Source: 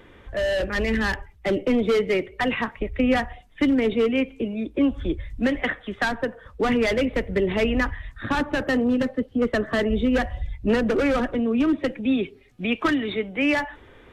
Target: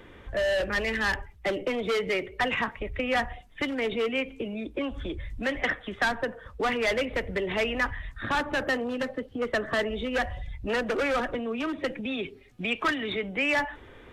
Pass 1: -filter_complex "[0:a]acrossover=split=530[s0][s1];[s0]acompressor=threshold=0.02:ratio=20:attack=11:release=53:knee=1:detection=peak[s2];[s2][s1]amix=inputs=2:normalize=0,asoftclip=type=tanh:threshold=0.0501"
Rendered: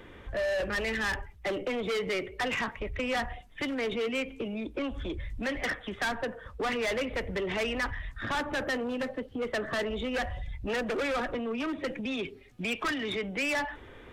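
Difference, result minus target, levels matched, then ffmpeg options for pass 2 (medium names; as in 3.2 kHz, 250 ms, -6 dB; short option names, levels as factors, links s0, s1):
saturation: distortion +14 dB
-filter_complex "[0:a]acrossover=split=530[s0][s1];[s0]acompressor=threshold=0.02:ratio=20:attack=11:release=53:knee=1:detection=peak[s2];[s2][s1]amix=inputs=2:normalize=0,asoftclip=type=tanh:threshold=0.178"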